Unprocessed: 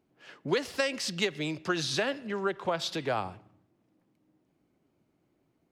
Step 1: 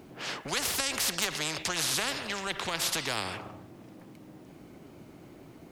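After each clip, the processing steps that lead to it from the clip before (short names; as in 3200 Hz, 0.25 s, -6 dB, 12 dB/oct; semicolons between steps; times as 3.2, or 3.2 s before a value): spectral compressor 4:1; gain +4 dB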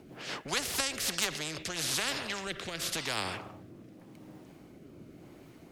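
rotary speaker horn 5 Hz, later 0.9 Hz, at 0.43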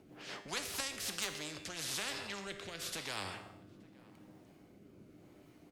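resonator 100 Hz, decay 0.73 s, harmonics all, mix 70%; outdoor echo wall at 150 m, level -22 dB; gain +1 dB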